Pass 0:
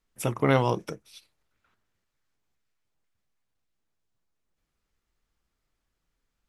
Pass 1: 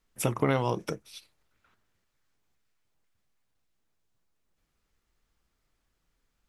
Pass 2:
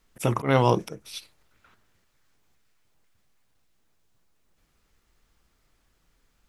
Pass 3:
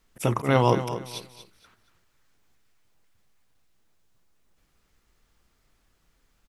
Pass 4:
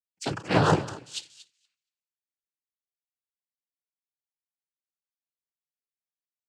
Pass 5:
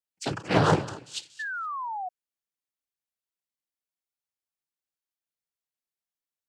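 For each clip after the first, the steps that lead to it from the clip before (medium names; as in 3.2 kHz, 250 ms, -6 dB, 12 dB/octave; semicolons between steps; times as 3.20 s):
compression 5:1, threshold -25 dBFS, peak gain reduction 9 dB; trim +3 dB
slow attack 152 ms; trim +8.5 dB
feedback delay 235 ms, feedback 27%, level -11.5 dB
noise-vocoded speech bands 8; three bands expanded up and down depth 100%; trim -4.5 dB
painted sound fall, 1.39–2.09 s, 710–1800 Hz -33 dBFS; loudspeaker Doppler distortion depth 0.27 ms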